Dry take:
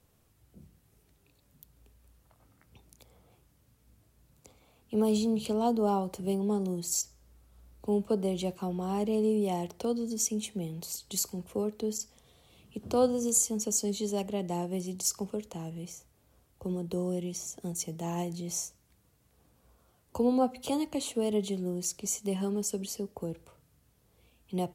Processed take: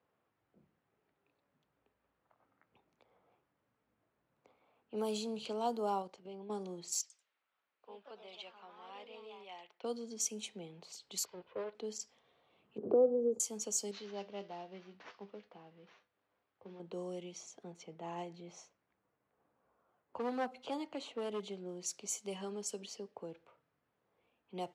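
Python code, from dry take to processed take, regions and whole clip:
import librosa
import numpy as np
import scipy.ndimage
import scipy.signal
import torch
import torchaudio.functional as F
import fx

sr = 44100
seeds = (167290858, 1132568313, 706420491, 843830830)

y = fx.chain(x, sr, fx.lowpass(hz=6900.0, slope=12),
    fx.level_steps(step_db=12), at=(6.02, 6.5))
y = fx.chain(y, sr, fx.bandpass_q(hz=2900.0, q=0.98),
    fx.echo_pitch(ms=89, semitones=2, count=2, db_per_echo=-6.0), at=(7.01, 9.84))
y = fx.chain(y, sr, fx.lower_of_two(delay_ms=2.0),
    fx.lowpass(hz=4100.0, slope=24), at=(11.25, 11.75))
y = fx.chain(y, sr, fx.lowpass_res(hz=430.0, q=3.3),
    fx.room_flutter(wall_m=11.9, rt60_s=0.22),
    fx.band_squash(depth_pct=70), at=(12.78, 13.4))
y = fx.chain(y, sr, fx.cvsd(bps=32000),
    fx.comb_fb(f0_hz=100.0, decay_s=0.2, harmonics='all', damping=0.0, mix_pct=70), at=(13.91, 16.8))
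y = fx.chain(y, sr, fx.block_float(bits=7),
    fx.high_shelf(hz=3800.0, db=-9.5),
    fx.clip_hard(threshold_db=-24.0), at=(17.63, 21.69))
y = fx.weighting(y, sr, curve='A')
y = fx.env_lowpass(y, sr, base_hz=1700.0, full_db=-29.5)
y = fx.high_shelf(y, sr, hz=9400.0, db=-4.0)
y = F.gain(torch.from_numpy(y), -4.0).numpy()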